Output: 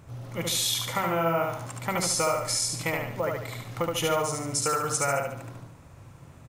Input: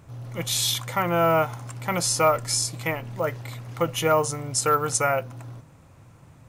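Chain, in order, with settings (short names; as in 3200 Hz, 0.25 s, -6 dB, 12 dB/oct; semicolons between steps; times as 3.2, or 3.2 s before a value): compressor 4:1, threshold -25 dBFS, peak gain reduction 9 dB; feedback echo 72 ms, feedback 43%, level -3 dB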